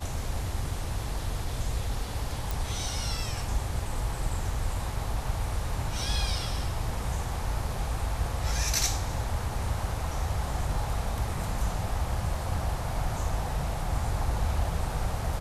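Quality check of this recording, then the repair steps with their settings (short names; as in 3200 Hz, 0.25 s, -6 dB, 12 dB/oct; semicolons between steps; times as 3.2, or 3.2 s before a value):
2.51 pop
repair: de-click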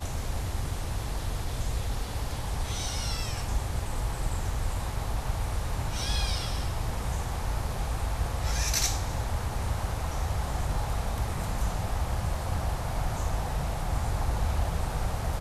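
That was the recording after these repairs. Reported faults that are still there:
none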